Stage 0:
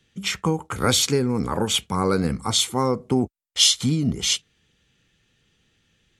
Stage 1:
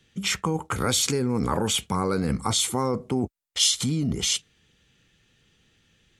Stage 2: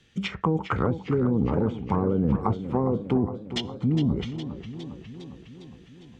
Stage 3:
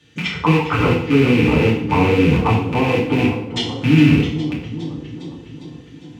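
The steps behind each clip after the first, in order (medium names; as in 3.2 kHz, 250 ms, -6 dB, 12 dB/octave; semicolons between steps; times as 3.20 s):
dynamic bell 8.9 kHz, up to +5 dB, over -34 dBFS, Q 0.99; in parallel at -1 dB: compressor with a negative ratio -25 dBFS, ratio -0.5; on the sum: trim -6.5 dB
low-pass that closes with the level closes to 450 Hz, closed at -20 dBFS; treble shelf 9.4 kHz -10 dB; modulated delay 408 ms, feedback 64%, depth 103 cents, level -11 dB; trim +2.5 dB
rattle on loud lows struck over -28 dBFS, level -19 dBFS; high-pass 60 Hz; FDN reverb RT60 0.65 s, low-frequency decay 1×, high-frequency decay 0.9×, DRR -5.5 dB; trim +2 dB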